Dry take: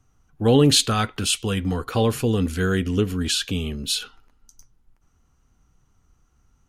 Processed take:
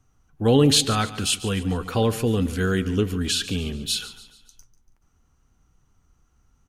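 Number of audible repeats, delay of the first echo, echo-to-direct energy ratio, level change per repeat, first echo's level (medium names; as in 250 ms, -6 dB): 3, 143 ms, -14.5 dB, -7.0 dB, -15.5 dB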